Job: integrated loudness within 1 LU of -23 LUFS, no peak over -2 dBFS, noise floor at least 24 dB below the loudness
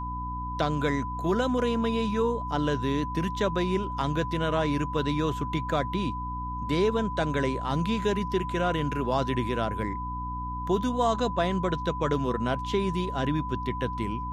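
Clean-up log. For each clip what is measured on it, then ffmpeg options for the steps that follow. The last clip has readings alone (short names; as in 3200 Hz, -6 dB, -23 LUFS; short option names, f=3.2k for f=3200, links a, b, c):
hum 60 Hz; harmonics up to 300 Hz; hum level -33 dBFS; steady tone 1000 Hz; tone level -33 dBFS; loudness -28.0 LUFS; peak -12.5 dBFS; loudness target -23.0 LUFS
-> -af "bandreject=f=60:t=h:w=4,bandreject=f=120:t=h:w=4,bandreject=f=180:t=h:w=4,bandreject=f=240:t=h:w=4,bandreject=f=300:t=h:w=4"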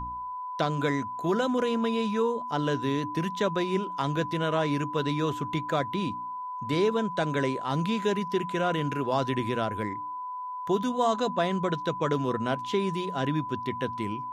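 hum none; steady tone 1000 Hz; tone level -33 dBFS
-> -af "bandreject=f=1k:w=30"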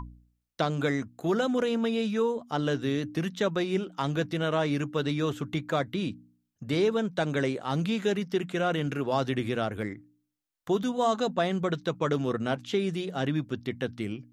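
steady tone none; loudness -29.0 LUFS; peak -13.0 dBFS; loudness target -23.0 LUFS
-> -af "volume=6dB"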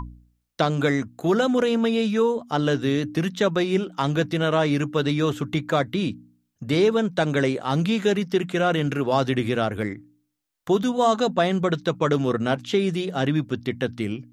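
loudness -23.0 LUFS; peak -7.0 dBFS; noise floor -72 dBFS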